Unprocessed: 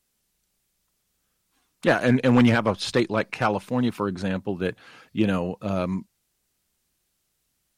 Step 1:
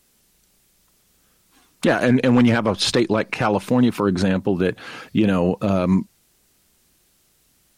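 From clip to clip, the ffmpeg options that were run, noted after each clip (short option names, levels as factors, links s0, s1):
-filter_complex "[0:a]asplit=2[s0][s1];[s1]acompressor=threshold=0.0398:ratio=6,volume=1.06[s2];[s0][s2]amix=inputs=2:normalize=0,equalizer=f=310:w=0.88:g=3,alimiter=limit=0.2:level=0:latency=1:release=107,volume=2"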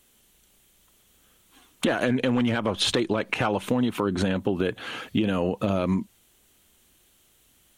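-af "equalizer=f=160:t=o:w=0.33:g=-7,equalizer=f=3150:t=o:w=0.33:g=6,equalizer=f=5000:t=o:w=0.33:g=-8,acompressor=threshold=0.1:ratio=6"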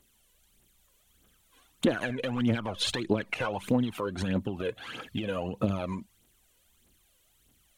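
-af "aphaser=in_gain=1:out_gain=1:delay=2.1:decay=0.64:speed=1.6:type=triangular,volume=0.398"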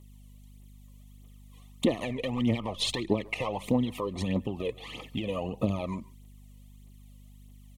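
-filter_complex "[0:a]aeval=exprs='val(0)+0.00316*(sin(2*PI*50*n/s)+sin(2*PI*2*50*n/s)/2+sin(2*PI*3*50*n/s)/3+sin(2*PI*4*50*n/s)/4+sin(2*PI*5*50*n/s)/5)':c=same,asuperstop=centerf=1500:order=12:qfactor=2.8,asplit=2[s0][s1];[s1]adelay=140,highpass=300,lowpass=3400,asoftclip=type=hard:threshold=0.0794,volume=0.0891[s2];[s0][s2]amix=inputs=2:normalize=0"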